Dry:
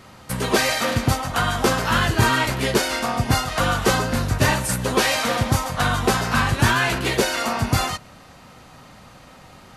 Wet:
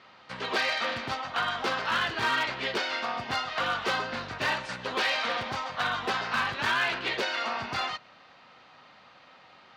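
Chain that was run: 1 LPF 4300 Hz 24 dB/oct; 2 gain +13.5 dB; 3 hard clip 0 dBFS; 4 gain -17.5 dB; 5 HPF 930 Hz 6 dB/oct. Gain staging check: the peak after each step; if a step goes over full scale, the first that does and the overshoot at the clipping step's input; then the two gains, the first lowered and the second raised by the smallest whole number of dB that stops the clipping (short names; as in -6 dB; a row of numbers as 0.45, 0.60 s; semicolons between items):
-5.0, +8.5, 0.0, -17.5, -15.0 dBFS; step 2, 8.5 dB; step 2 +4.5 dB, step 4 -8.5 dB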